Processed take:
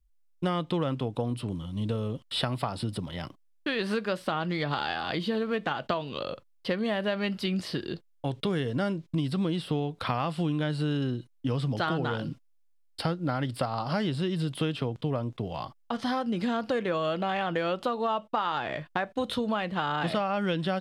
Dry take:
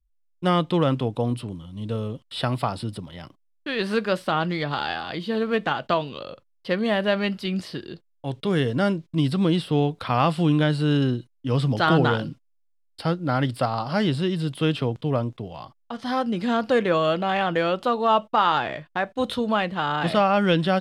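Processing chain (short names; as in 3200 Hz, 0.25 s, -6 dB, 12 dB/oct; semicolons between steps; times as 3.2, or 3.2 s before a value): compressor 6:1, threshold -29 dBFS, peak gain reduction 14.5 dB; gain +3 dB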